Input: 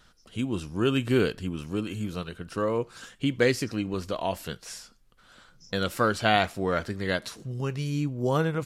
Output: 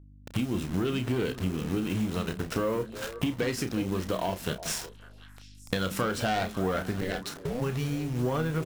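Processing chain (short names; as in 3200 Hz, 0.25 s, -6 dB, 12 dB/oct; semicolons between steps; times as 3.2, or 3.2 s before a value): level-crossing sampler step -40.5 dBFS; notch 4600 Hz, Q 14; sample leveller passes 3; compressor 12:1, threshold -31 dBFS, peak gain reduction 19.5 dB; buzz 50 Hz, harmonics 6, -55 dBFS -7 dB/oct; 7–7.6 ring modulator 76 Hz -> 410 Hz; doubler 32 ms -9.5 dB; delay with a stepping band-pass 0.184 s, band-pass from 190 Hz, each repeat 1.4 oct, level -7.5 dB; gain +4 dB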